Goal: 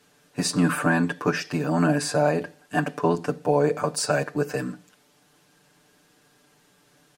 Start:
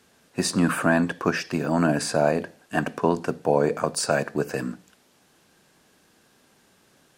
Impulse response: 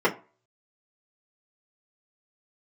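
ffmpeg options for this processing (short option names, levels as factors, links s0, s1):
-af "aecho=1:1:6.8:0.85,volume=0.75"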